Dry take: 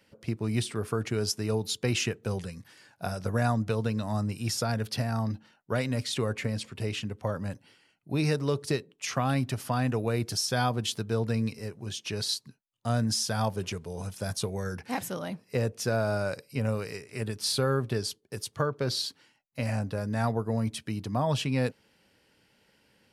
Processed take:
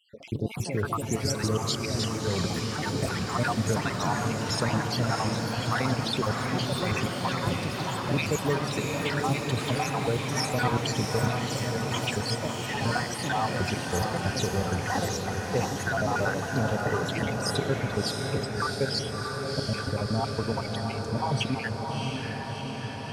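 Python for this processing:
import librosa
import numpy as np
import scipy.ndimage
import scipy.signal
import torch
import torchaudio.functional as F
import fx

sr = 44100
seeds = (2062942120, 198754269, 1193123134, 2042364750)

p1 = fx.spec_dropout(x, sr, seeds[0], share_pct=68)
p2 = fx.lowpass(p1, sr, hz=2400.0, slope=6)
p3 = fx.over_compress(p2, sr, threshold_db=-38.0, ratio=-1.0)
p4 = p2 + (p3 * 10.0 ** (2.5 / 20.0))
p5 = fx.echo_diffused(p4, sr, ms=679, feedback_pct=73, wet_db=-3.5)
y = fx.echo_pitch(p5, sr, ms=95, semitones=4, count=3, db_per_echo=-6.0)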